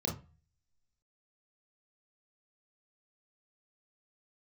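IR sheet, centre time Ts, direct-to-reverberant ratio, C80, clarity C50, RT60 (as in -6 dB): 23 ms, -1.5 dB, 17.5 dB, 9.5 dB, 0.35 s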